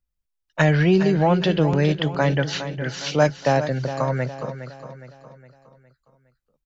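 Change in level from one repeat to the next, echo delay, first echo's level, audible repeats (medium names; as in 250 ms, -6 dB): -7.0 dB, 412 ms, -11.0 dB, 4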